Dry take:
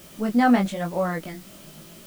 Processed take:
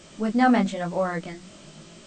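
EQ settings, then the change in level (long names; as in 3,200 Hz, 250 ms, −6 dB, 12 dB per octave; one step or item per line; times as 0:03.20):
linear-phase brick-wall low-pass 8,700 Hz
mains-hum notches 60/120/180/240 Hz
0.0 dB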